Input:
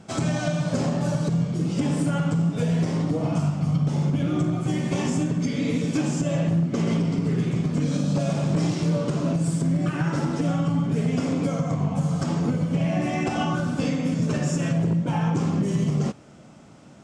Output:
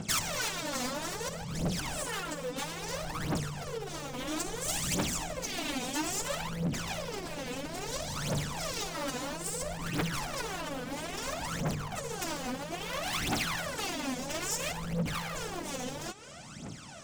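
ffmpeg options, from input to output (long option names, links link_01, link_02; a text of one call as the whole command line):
ffmpeg -i in.wav -filter_complex "[0:a]aemphasis=mode=reproduction:type=50kf,asettb=1/sr,asplit=3[link_01][link_02][link_03];[link_01]atrim=end=2.394[link_04];[link_02]atrim=start=2.39:end=2.94,asetpts=PTS-STARTPTS,afade=type=in:duration=0.004:curve=qsin,afade=type=out:start_time=0.546:duration=0.004:curve=qsin,bandreject=frequency=60:width_type=h:width=6,bandreject=frequency=120:width_type=h:width=6,bandreject=frequency=180:width_type=h:width=6,bandreject=frequency=240:width_type=h:width=6[link_05];[link_03]atrim=start=2.936[link_06];[link_04][link_05]acrossfade=duration=0.004:curve1=hsin:curve2=qsin[link_07];[link_07][link_06]acrossfade=duration=0.004:curve1=qsin:curve2=hsin,asettb=1/sr,asplit=3[link_08][link_09][link_10];[link_08]atrim=end=4.274[link_11];[link_09]atrim=start=4.27:end=4.95,asetpts=PTS-STARTPTS,afade=type=in:duration=0.004:curve=qsin,afade=type=out:start_time=0.676:duration=0.004:curve=qsin,bass=frequency=250:gain=2,treble=frequency=4000:gain=12[link_12];[link_10]atrim=start=4.946[link_13];[link_11][link_12]acrossfade=duration=0.004:curve1=hsin:curve2=qsin[link_14];[link_14][link_13]acrossfade=duration=0.004:curve1=qsin:curve2=hsin,acompressor=threshold=-30dB:ratio=8,aeval=exprs='0.0224*(abs(mod(val(0)/0.0224+3,4)-2)-1)':channel_layout=same,crystalizer=i=8.5:c=0,aphaser=in_gain=1:out_gain=1:delay=4.1:decay=0.76:speed=0.6:type=triangular,volume=-3.5dB" out.wav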